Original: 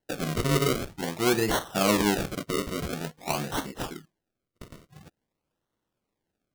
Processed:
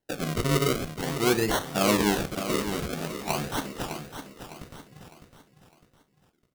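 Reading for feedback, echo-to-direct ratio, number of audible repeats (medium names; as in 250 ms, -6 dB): 39%, -9.0 dB, 4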